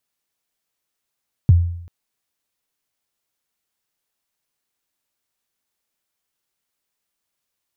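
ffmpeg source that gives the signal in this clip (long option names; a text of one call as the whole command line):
ffmpeg -f lavfi -i "aevalsrc='0.562*pow(10,-3*t/0.7)*sin(2*PI*(150*0.023/log(86/150)*(exp(log(86/150)*min(t,0.023)/0.023)-1)+86*max(t-0.023,0)))':duration=0.39:sample_rate=44100" out.wav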